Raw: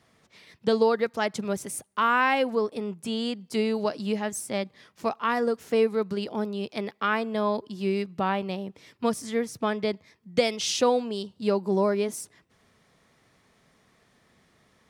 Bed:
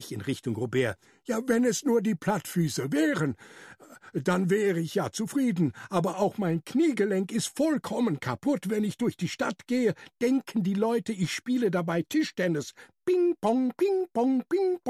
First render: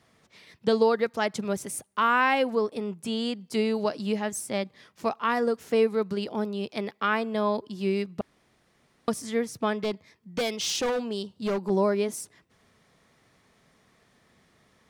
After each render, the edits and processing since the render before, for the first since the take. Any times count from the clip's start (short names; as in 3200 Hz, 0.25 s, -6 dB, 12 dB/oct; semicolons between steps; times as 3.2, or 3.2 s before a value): 8.21–9.08 room tone; 9.76–11.7 hard clip -24 dBFS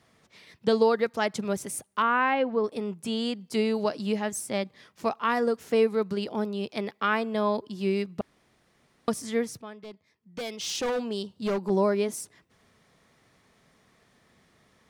2.02–2.64 air absorption 310 m; 9.62–11.01 fade in quadratic, from -15.5 dB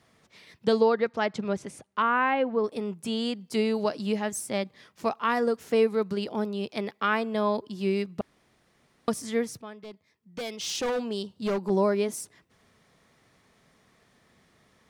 0.81–2.59 Bessel low-pass 3800 Hz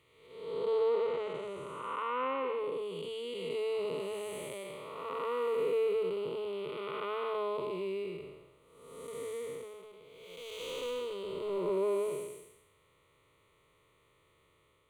time blur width 0.468 s; fixed phaser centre 1100 Hz, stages 8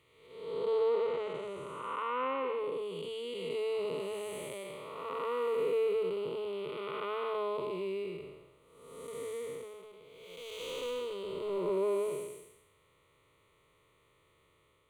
nothing audible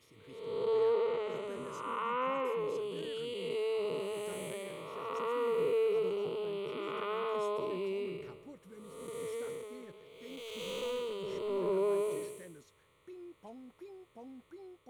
add bed -25.5 dB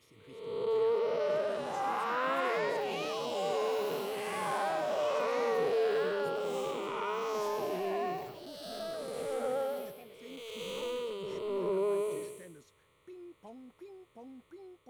echoes that change speed 0.694 s, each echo +5 st, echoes 3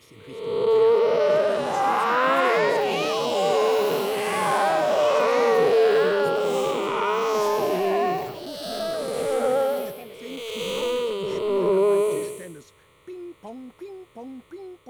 gain +11.5 dB